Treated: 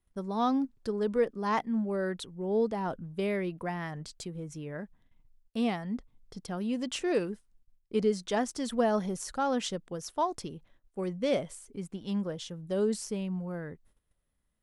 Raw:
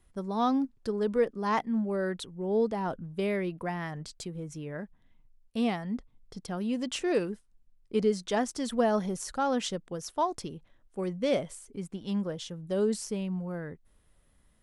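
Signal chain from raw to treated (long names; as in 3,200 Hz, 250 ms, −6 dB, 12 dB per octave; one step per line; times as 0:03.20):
noise gate −59 dBFS, range −13 dB
level −1 dB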